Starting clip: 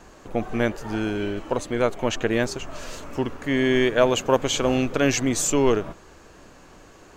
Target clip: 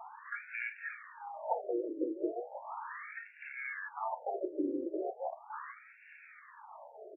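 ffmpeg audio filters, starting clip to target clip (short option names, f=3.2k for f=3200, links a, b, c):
-filter_complex "[0:a]acrossover=split=6200[a][b];[b]acompressor=threshold=-47dB:ratio=4:attack=1:release=60[c];[a][c]amix=inputs=2:normalize=0,asplit=3[d][e][f];[d]bandpass=f=300:t=q:w=8,volume=0dB[g];[e]bandpass=f=870:t=q:w=8,volume=-6dB[h];[f]bandpass=f=2.24k:t=q:w=8,volume=-9dB[i];[g][h][i]amix=inputs=3:normalize=0,aecho=1:1:25|37:0.376|0.316,asplit=4[j][k][l][m];[k]asetrate=33038,aresample=44100,atempo=1.33484,volume=-4dB[n];[l]asetrate=58866,aresample=44100,atempo=0.749154,volume=-10dB[o];[m]asetrate=88200,aresample=44100,atempo=0.5,volume=-8dB[p];[j][n][o][p]amix=inputs=4:normalize=0,asubboost=boost=10:cutoff=170,asoftclip=type=tanh:threshold=-19dB,acompressor=threshold=-39dB:ratio=12,afftfilt=real='re*between(b*sr/1024,410*pow(2000/410,0.5+0.5*sin(2*PI*0.37*pts/sr))/1.41,410*pow(2000/410,0.5+0.5*sin(2*PI*0.37*pts/sr))*1.41)':imag='im*between(b*sr/1024,410*pow(2000/410,0.5+0.5*sin(2*PI*0.37*pts/sr))/1.41,410*pow(2000/410,0.5+0.5*sin(2*PI*0.37*pts/sr))*1.41)':win_size=1024:overlap=0.75,volume=17.5dB"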